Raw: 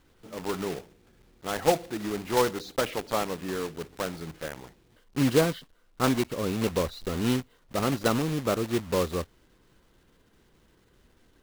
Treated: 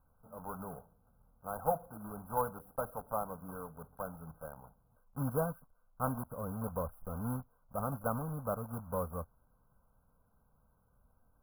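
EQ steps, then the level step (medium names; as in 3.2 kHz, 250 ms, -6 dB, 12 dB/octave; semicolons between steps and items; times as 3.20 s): brick-wall FIR band-stop 1.6–10 kHz; static phaser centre 850 Hz, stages 4; -5.5 dB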